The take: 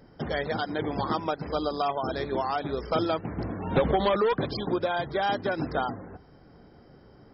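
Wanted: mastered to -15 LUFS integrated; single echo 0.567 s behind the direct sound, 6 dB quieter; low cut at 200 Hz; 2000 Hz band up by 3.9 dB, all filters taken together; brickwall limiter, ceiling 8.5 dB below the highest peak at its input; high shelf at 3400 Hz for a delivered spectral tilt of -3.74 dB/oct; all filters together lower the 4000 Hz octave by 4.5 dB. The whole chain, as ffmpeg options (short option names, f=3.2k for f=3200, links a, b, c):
-af "highpass=200,equalizer=f=2k:t=o:g=7.5,highshelf=f=3.4k:g=-3.5,equalizer=f=4k:t=o:g=-6.5,alimiter=limit=-19.5dB:level=0:latency=1,aecho=1:1:567:0.501,volume=15dB"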